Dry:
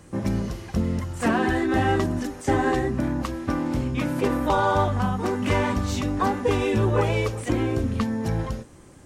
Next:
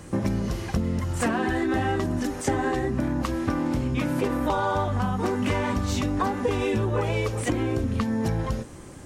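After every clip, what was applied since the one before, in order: compressor, threshold -28 dBFS, peak gain reduction 11 dB; gain +6 dB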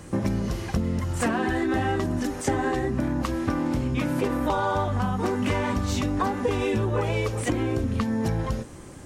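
nothing audible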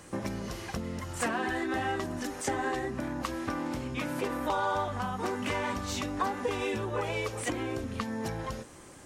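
low shelf 330 Hz -11 dB; gain -2.5 dB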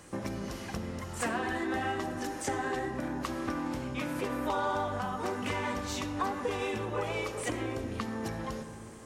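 reverb RT60 2.9 s, pre-delay 25 ms, DRR 8 dB; gain -2 dB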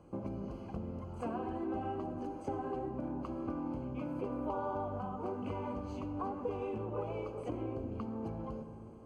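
running mean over 24 samples; gain -3 dB

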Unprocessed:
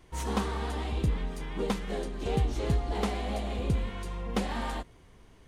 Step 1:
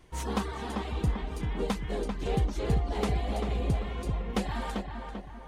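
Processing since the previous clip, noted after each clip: reverb removal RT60 0.62 s; darkening echo 0.392 s, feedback 49%, low-pass 2500 Hz, level -5 dB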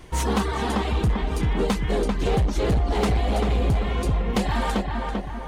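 in parallel at +1 dB: compressor, threshold -35 dBFS, peak gain reduction 13 dB; on the sum: hard clip -22.5 dBFS, distortion -14 dB; gain +6 dB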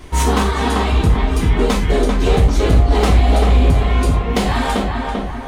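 non-linear reverb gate 0.13 s falling, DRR 0 dB; gain +5 dB

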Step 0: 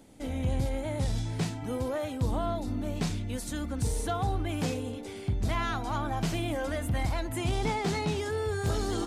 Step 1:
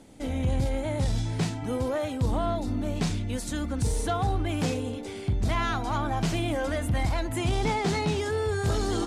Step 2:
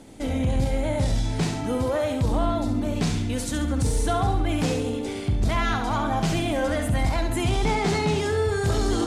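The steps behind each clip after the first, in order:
LPF 11000 Hz 12 dB/oct; in parallel at -6 dB: hard clip -25.5 dBFS, distortion -15 dB
flutter echo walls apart 11.7 m, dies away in 0.56 s; in parallel at -2.5 dB: limiter -25 dBFS, peak gain reduction 11 dB

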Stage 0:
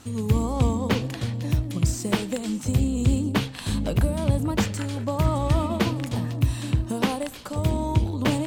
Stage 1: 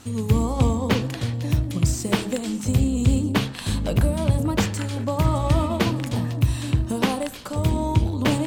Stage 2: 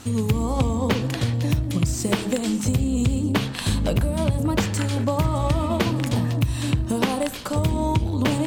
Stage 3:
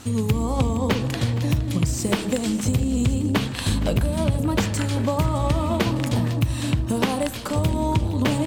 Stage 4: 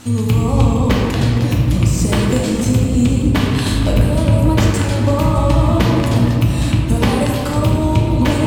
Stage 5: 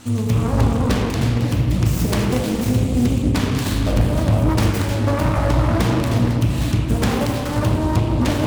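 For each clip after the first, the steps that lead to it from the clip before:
de-hum 69.84 Hz, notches 27; gain +2.5 dB
compressor, threshold -22 dBFS, peak gain reduction 10 dB; gain +4.5 dB
feedback echo 0.465 s, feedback 53%, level -16 dB
reverb RT60 2.1 s, pre-delay 3 ms, DRR -1.5 dB; gain +2.5 dB
self-modulated delay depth 0.49 ms; gain -3.5 dB

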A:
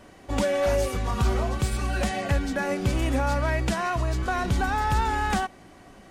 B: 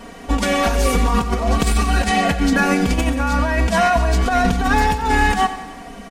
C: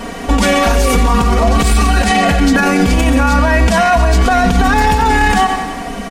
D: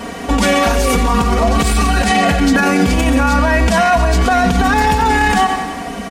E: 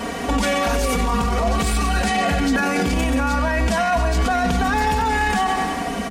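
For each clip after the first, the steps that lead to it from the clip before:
comb 4.3 ms, depth 93%; negative-ratio compressor -24 dBFS, ratio -0.5; on a send: feedback echo 91 ms, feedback 58%, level -13 dB; on the sum: gain +8 dB
maximiser +14 dB; gain -2 dB
HPF 55 Hz; gain -1 dB
de-hum 47.69 Hz, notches 8; limiter -11.5 dBFS, peak gain reduction 9.5 dB

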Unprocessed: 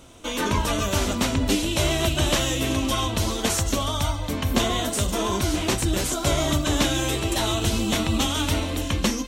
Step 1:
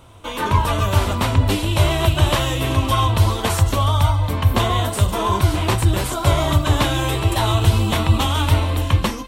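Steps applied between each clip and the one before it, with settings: fifteen-band EQ 100 Hz +12 dB, 250 Hz -5 dB, 1000 Hz +7 dB, 6300 Hz -9 dB; AGC gain up to 3.5 dB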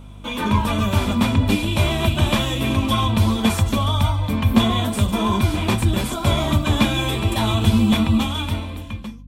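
ending faded out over 1.46 s; small resonant body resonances 220/2400/3400 Hz, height 17 dB, ringing for 95 ms; hum 50 Hz, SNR 21 dB; gain -3.5 dB

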